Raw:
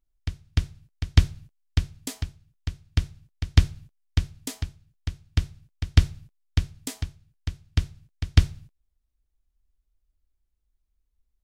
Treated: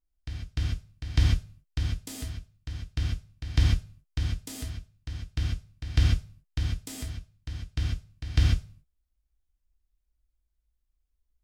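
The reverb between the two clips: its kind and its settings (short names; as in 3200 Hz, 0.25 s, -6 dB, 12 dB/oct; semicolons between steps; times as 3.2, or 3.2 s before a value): non-linear reverb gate 0.17 s flat, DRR -4.5 dB; gain -9 dB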